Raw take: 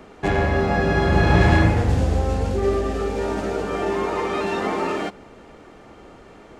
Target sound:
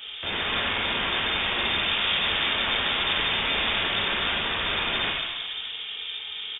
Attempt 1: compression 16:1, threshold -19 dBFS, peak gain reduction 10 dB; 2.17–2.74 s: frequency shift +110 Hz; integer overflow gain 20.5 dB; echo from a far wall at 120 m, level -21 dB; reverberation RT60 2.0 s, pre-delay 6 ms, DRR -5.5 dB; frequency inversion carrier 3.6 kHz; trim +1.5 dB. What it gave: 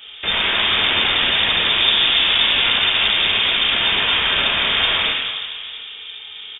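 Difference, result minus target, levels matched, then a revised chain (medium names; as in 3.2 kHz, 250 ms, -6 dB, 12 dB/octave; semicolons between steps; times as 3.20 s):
integer overflow: distortion -27 dB
compression 16:1, threshold -19 dBFS, peak gain reduction 10 dB; 2.17–2.74 s: frequency shift +110 Hz; integer overflow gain 27.5 dB; echo from a far wall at 120 m, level -21 dB; reverberation RT60 2.0 s, pre-delay 6 ms, DRR -5.5 dB; frequency inversion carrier 3.6 kHz; trim +1.5 dB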